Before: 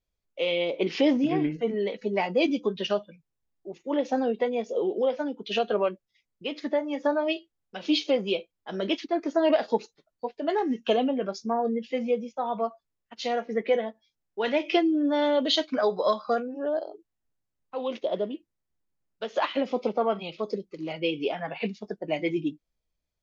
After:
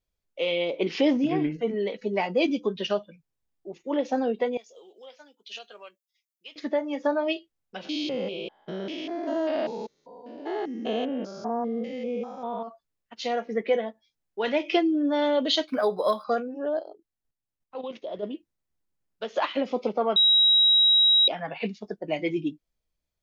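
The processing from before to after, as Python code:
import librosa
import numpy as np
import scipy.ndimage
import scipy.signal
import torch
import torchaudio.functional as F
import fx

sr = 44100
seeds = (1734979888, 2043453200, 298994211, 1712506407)

y = fx.differentiator(x, sr, at=(4.57, 6.56))
y = fx.spec_steps(y, sr, hold_ms=200, at=(7.84, 12.67), fade=0.02)
y = fx.resample_linear(y, sr, factor=3, at=(15.68, 16.24))
y = fx.level_steps(y, sr, step_db=11, at=(16.81, 18.22), fade=0.02)
y = fx.edit(y, sr, fx.bleep(start_s=20.16, length_s=1.12, hz=3840.0, db=-15.5), tone=tone)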